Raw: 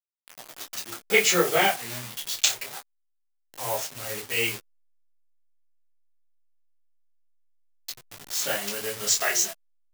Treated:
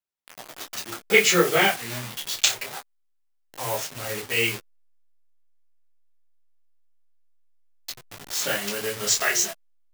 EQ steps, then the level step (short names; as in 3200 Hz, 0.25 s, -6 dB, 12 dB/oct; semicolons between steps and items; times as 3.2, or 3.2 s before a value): high shelf 3700 Hz -5.5 dB; dynamic EQ 720 Hz, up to -6 dB, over -39 dBFS, Q 1.4; +5.0 dB